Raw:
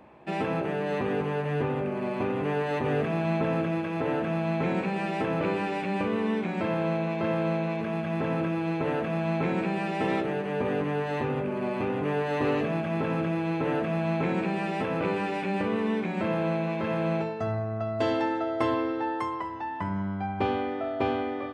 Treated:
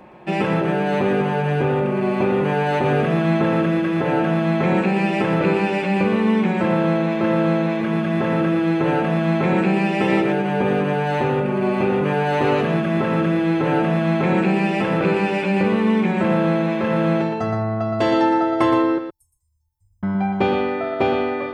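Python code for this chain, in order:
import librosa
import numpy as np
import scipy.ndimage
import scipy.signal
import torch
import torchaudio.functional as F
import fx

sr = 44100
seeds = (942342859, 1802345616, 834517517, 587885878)

p1 = fx.cheby2_bandstop(x, sr, low_hz=200.0, high_hz=3000.0, order=4, stop_db=70, at=(18.98, 20.03))
p2 = p1 + 0.42 * np.pad(p1, (int(5.5 * sr / 1000.0), 0))[:len(p1)]
p3 = p2 + fx.echo_single(p2, sr, ms=118, db=-7.5, dry=0)
y = p3 * librosa.db_to_amplitude(7.5)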